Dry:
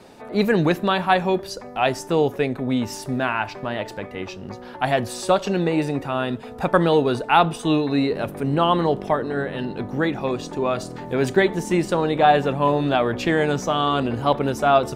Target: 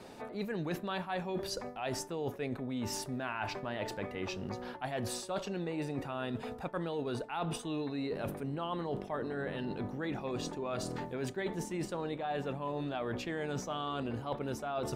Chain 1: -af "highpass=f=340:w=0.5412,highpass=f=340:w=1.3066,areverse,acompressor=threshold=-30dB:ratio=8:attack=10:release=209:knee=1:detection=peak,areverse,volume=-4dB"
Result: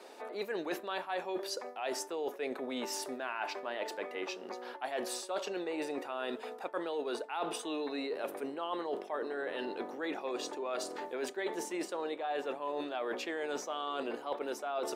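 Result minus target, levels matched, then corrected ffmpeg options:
250 Hz band -3.5 dB
-af "areverse,acompressor=threshold=-30dB:ratio=8:attack=10:release=209:knee=1:detection=peak,areverse,volume=-4dB"

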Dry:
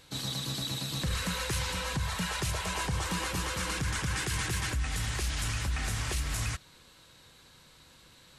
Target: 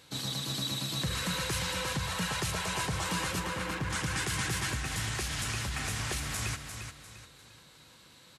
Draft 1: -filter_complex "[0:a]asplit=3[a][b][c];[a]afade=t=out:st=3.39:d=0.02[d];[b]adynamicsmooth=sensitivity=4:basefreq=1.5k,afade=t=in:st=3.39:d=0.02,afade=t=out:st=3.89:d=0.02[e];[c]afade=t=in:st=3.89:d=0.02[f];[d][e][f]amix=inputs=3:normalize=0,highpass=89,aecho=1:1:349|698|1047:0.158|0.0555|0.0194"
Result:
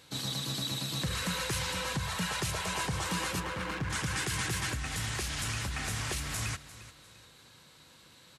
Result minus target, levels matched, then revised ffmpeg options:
echo-to-direct -8.5 dB
-filter_complex "[0:a]asplit=3[a][b][c];[a]afade=t=out:st=3.39:d=0.02[d];[b]adynamicsmooth=sensitivity=4:basefreq=1.5k,afade=t=in:st=3.39:d=0.02,afade=t=out:st=3.89:d=0.02[e];[c]afade=t=in:st=3.89:d=0.02[f];[d][e][f]amix=inputs=3:normalize=0,highpass=89,aecho=1:1:349|698|1047|1396:0.422|0.148|0.0517|0.0181"

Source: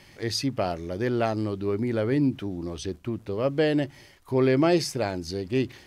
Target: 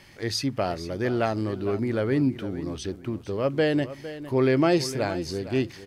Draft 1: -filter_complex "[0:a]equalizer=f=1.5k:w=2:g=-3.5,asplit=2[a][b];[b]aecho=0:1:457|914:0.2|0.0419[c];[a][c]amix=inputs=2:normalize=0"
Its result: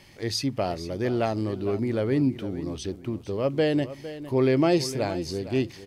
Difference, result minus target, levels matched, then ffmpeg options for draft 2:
2000 Hz band -3.5 dB
-filter_complex "[0:a]equalizer=f=1.5k:w=2:g=2.5,asplit=2[a][b];[b]aecho=0:1:457|914:0.2|0.0419[c];[a][c]amix=inputs=2:normalize=0"

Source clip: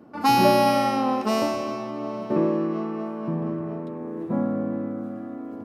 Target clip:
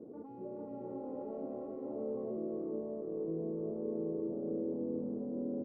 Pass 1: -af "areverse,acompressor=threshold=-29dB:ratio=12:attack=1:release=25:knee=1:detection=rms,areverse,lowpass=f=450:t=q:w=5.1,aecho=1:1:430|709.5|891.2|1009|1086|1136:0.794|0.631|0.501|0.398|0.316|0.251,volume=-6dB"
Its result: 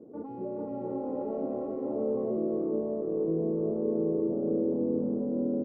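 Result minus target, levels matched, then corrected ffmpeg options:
compressor: peak gain reduction -8.5 dB
-af "areverse,acompressor=threshold=-38.5dB:ratio=12:attack=1:release=25:knee=1:detection=rms,areverse,lowpass=f=450:t=q:w=5.1,aecho=1:1:430|709.5|891.2|1009|1086|1136:0.794|0.631|0.501|0.398|0.316|0.251,volume=-6dB"

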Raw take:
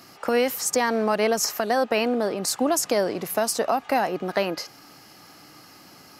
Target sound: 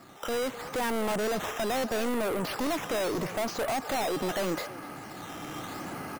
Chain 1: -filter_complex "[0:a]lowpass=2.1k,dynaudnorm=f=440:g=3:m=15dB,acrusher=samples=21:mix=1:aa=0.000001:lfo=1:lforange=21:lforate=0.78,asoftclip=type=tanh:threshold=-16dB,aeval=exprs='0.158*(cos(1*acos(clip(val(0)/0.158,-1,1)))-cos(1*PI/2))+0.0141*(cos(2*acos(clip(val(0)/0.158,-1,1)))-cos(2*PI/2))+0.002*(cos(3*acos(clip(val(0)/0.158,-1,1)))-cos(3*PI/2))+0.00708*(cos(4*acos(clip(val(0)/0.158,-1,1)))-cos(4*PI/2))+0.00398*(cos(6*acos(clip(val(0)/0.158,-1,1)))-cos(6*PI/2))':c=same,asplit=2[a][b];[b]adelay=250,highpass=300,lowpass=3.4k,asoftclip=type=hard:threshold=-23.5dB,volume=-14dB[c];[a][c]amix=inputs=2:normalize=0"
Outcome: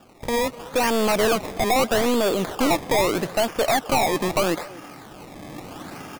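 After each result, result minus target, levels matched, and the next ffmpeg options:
decimation with a swept rate: distortion +11 dB; soft clip: distortion -6 dB
-filter_complex "[0:a]lowpass=2.1k,dynaudnorm=f=440:g=3:m=15dB,acrusher=samples=7:mix=1:aa=0.000001:lfo=1:lforange=7:lforate=0.78,asoftclip=type=tanh:threshold=-16dB,aeval=exprs='0.158*(cos(1*acos(clip(val(0)/0.158,-1,1)))-cos(1*PI/2))+0.0141*(cos(2*acos(clip(val(0)/0.158,-1,1)))-cos(2*PI/2))+0.002*(cos(3*acos(clip(val(0)/0.158,-1,1)))-cos(3*PI/2))+0.00708*(cos(4*acos(clip(val(0)/0.158,-1,1)))-cos(4*PI/2))+0.00398*(cos(6*acos(clip(val(0)/0.158,-1,1)))-cos(6*PI/2))':c=same,asplit=2[a][b];[b]adelay=250,highpass=300,lowpass=3.4k,asoftclip=type=hard:threshold=-23.5dB,volume=-14dB[c];[a][c]amix=inputs=2:normalize=0"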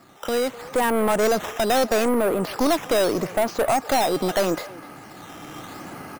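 soft clip: distortion -6 dB
-filter_complex "[0:a]lowpass=2.1k,dynaudnorm=f=440:g=3:m=15dB,acrusher=samples=7:mix=1:aa=0.000001:lfo=1:lforange=7:lforate=0.78,asoftclip=type=tanh:threshold=-27.5dB,aeval=exprs='0.158*(cos(1*acos(clip(val(0)/0.158,-1,1)))-cos(1*PI/2))+0.0141*(cos(2*acos(clip(val(0)/0.158,-1,1)))-cos(2*PI/2))+0.002*(cos(3*acos(clip(val(0)/0.158,-1,1)))-cos(3*PI/2))+0.00708*(cos(4*acos(clip(val(0)/0.158,-1,1)))-cos(4*PI/2))+0.00398*(cos(6*acos(clip(val(0)/0.158,-1,1)))-cos(6*PI/2))':c=same,asplit=2[a][b];[b]adelay=250,highpass=300,lowpass=3.4k,asoftclip=type=hard:threshold=-23.5dB,volume=-14dB[c];[a][c]amix=inputs=2:normalize=0"

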